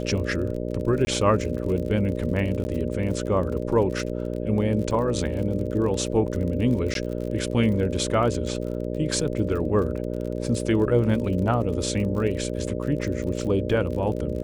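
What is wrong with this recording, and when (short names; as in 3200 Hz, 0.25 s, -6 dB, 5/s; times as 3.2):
buzz 60 Hz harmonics 10 -29 dBFS
crackle 43/s -32 dBFS
1.05–1.07 gap 20 ms
2.64–2.65 gap 10 ms
6.94–6.95 gap 12 ms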